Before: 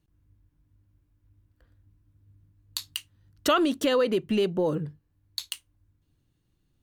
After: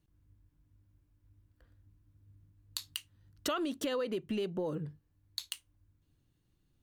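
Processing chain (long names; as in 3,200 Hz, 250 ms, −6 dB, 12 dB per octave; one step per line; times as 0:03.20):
downward compressor 2.5 to 1, threshold −33 dBFS, peak gain reduction 10 dB
level −2.5 dB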